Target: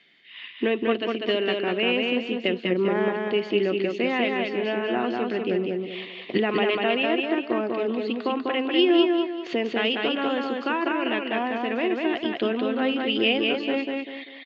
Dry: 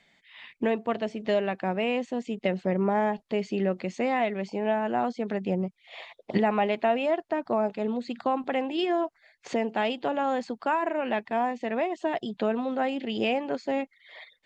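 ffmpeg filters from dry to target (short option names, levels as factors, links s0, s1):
-filter_complex "[0:a]highpass=170,equalizer=f=190:t=q:w=4:g=-6,equalizer=f=350:t=q:w=4:g=6,equalizer=f=610:t=q:w=4:g=-8,equalizer=f=860:t=q:w=4:g=-10,equalizer=f=2900:t=q:w=4:g=8,lowpass=f=4700:w=0.5412,lowpass=f=4700:w=1.3066,asplit=2[s0][s1];[s1]aecho=0:1:196|392|588|784|980:0.708|0.248|0.0867|0.0304|0.0106[s2];[s0][s2]amix=inputs=2:normalize=0,volume=1.5"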